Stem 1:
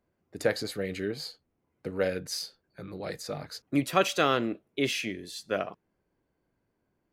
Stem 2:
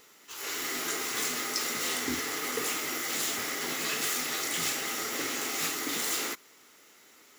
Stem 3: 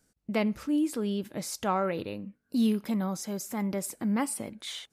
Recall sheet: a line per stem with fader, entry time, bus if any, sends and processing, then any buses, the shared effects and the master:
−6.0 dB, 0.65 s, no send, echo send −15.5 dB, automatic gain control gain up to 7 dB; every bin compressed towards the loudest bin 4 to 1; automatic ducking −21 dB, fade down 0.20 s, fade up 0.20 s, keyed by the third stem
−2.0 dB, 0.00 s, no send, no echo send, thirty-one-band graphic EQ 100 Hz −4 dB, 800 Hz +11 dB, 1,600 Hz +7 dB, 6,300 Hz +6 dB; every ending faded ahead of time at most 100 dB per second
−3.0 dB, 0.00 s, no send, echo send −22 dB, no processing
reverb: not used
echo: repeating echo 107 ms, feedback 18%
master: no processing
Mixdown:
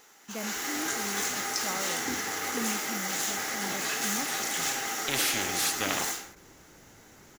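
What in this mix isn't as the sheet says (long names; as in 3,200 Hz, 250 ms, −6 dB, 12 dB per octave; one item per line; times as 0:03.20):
stem 1: entry 0.65 s → 0.30 s
stem 3 −3.0 dB → −10.5 dB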